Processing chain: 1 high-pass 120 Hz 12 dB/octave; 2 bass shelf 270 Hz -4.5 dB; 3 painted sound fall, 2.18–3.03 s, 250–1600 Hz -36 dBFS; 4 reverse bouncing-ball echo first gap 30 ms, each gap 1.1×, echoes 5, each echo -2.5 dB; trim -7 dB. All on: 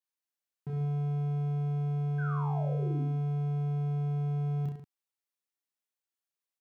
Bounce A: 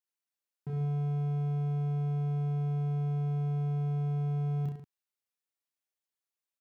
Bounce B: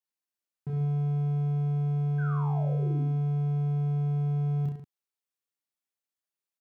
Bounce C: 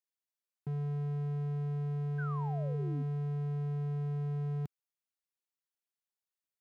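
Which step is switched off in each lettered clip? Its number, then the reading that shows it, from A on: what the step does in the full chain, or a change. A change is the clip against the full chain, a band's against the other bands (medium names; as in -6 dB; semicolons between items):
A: 3, crest factor change -3.0 dB; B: 2, 1 kHz band -3.0 dB; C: 4, loudness change -4.0 LU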